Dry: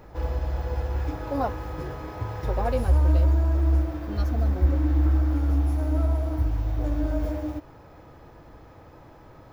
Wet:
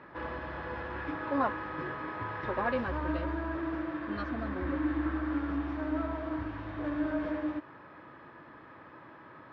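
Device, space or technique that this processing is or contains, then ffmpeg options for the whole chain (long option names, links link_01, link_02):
kitchen radio: -filter_complex "[0:a]asettb=1/sr,asplit=3[link_01][link_02][link_03];[link_01]atrim=end=3.554[link_04];[link_02]atrim=start=3.55:end=4,asetpts=PTS-STARTPTS,afade=type=in:duration=0.004:curve=qsin,afade=type=out:start_time=0.446:duration=0.004:curve=qsin,equalizer=frequency=75:width_type=o:width=0.32:gain=-11.5[link_05];[link_03]atrim=start=3.996[link_06];[link_04][link_05]acrossfade=duration=0.004:curve1=hsin:curve2=qsin[link_07];[link_07][link_06]acrossfade=duration=0.004:curve1=qsin:curve2=hsin,highpass=210,equalizer=frequency=470:width_type=q:width=4:gain=-7,equalizer=frequency=750:width_type=q:width=4:gain=-8,equalizer=frequency=1100:width_type=q:width=4:gain=6,equalizer=frequency=1700:width_type=q:width=4:gain=8,lowpass=frequency=3500:width=0.5412,lowpass=frequency=3500:width=1.3066"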